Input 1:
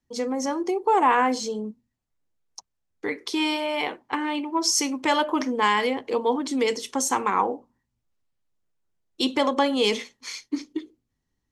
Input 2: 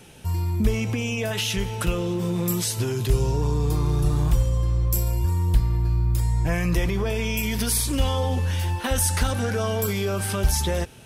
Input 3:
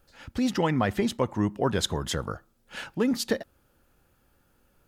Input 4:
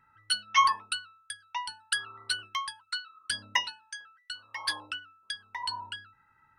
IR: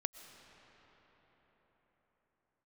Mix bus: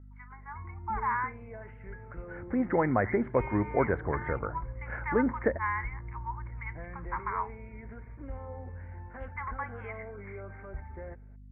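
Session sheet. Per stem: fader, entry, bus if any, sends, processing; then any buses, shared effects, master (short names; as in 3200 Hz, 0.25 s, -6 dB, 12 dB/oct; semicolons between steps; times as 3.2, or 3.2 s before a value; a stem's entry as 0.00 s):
-6.5 dB, 0.00 s, no send, steep high-pass 880 Hz 96 dB/oct
-16.0 dB, 0.30 s, no send, dry
+1.0 dB, 2.15 s, no send, dry
-13.5 dB, 0.00 s, no send, auto duck -16 dB, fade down 0.20 s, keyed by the first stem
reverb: off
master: hum 50 Hz, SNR 16 dB; rippled Chebyshev low-pass 2200 Hz, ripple 3 dB; bell 180 Hz -5.5 dB 0.71 oct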